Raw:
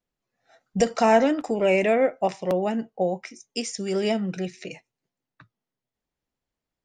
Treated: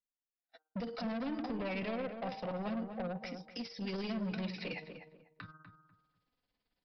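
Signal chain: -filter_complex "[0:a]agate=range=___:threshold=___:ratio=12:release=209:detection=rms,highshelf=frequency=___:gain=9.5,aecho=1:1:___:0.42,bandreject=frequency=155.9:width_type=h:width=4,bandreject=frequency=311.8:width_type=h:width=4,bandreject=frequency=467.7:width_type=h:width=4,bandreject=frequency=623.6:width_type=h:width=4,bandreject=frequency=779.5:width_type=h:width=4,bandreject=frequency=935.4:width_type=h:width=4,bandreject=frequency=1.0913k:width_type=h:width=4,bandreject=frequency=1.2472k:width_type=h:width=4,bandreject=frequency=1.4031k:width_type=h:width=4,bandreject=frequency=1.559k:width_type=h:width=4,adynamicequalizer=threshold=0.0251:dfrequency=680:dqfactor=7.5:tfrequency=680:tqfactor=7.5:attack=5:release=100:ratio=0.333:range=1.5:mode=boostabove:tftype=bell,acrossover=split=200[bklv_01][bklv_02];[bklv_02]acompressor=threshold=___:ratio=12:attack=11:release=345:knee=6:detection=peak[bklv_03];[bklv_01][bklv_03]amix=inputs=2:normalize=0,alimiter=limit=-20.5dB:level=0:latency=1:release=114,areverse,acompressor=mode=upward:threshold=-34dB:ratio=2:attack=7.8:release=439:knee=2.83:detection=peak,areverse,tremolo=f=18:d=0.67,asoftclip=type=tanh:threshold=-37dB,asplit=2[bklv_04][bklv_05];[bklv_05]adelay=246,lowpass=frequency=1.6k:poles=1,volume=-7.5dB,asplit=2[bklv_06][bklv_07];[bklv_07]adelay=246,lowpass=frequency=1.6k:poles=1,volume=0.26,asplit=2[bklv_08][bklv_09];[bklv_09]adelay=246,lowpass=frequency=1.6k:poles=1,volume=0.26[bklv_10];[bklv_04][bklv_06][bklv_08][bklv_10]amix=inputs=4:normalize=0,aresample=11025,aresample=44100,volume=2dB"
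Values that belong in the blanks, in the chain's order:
-43dB, -52dB, 2.7k, 4, -29dB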